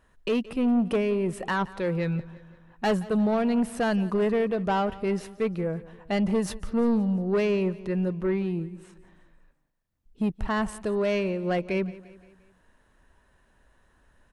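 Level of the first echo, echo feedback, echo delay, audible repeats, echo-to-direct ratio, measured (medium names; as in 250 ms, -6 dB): -19.0 dB, 51%, 174 ms, 3, -17.5 dB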